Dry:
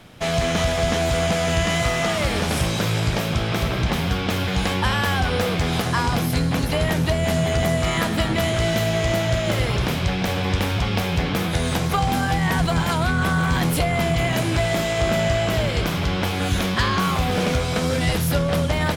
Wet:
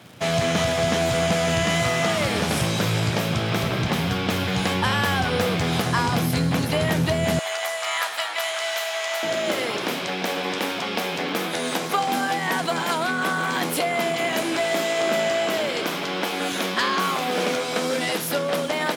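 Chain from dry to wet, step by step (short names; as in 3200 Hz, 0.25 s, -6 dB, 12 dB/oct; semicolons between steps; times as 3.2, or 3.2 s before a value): HPF 99 Hz 24 dB/oct, from 7.39 s 740 Hz, from 9.23 s 240 Hz; crackle 190/s -38 dBFS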